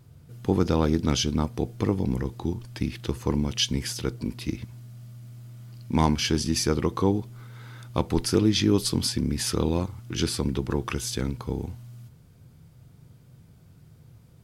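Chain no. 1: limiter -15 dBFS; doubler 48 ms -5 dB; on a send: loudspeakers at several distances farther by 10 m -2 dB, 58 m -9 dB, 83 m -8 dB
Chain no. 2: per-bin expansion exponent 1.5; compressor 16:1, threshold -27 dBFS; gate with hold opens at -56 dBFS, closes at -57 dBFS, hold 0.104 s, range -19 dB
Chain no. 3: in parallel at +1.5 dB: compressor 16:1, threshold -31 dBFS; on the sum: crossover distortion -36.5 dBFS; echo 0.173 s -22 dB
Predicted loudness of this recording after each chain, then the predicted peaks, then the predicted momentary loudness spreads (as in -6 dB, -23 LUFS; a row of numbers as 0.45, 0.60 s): -24.5, -34.5, -25.0 LUFS; -7.0, -15.5, -6.0 dBFS; 11, 20, 9 LU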